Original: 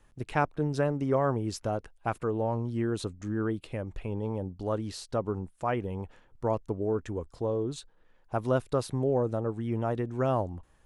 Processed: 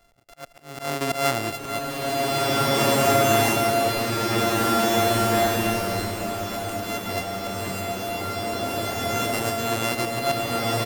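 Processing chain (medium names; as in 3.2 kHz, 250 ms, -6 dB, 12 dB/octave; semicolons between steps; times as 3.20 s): sorted samples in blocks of 64 samples; wavefolder -16.5 dBFS; bass shelf 210 Hz -11.5 dB; slow attack 142 ms; delay 176 ms -14 dB; slow attack 321 ms; swelling reverb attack 2060 ms, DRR -8.5 dB; trim +7 dB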